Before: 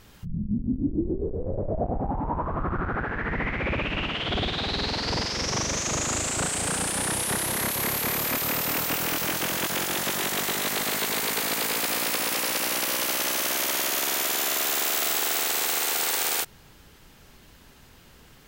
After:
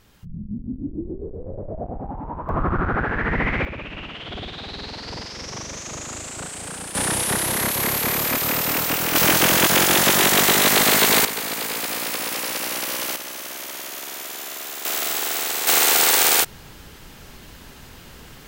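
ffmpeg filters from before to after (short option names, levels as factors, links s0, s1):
-af "asetnsamples=n=441:p=0,asendcmd='2.49 volume volume 6dB;3.65 volume volume -6dB;6.95 volume volume 4.5dB;9.15 volume volume 11dB;11.25 volume volume 0dB;13.16 volume volume -7dB;14.85 volume volume 1dB;15.67 volume volume 9.5dB',volume=0.668"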